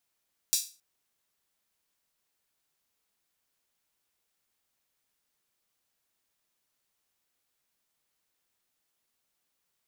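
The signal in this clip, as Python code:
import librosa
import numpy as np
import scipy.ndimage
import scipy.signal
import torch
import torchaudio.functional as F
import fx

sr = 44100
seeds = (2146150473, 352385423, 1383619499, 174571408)

y = fx.drum_hat_open(sr, length_s=0.27, from_hz=5000.0, decay_s=0.33)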